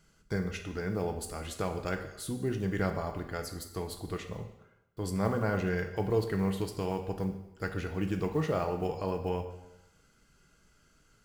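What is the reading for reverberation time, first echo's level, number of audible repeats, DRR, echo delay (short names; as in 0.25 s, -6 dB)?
0.90 s, none, none, 5.0 dB, none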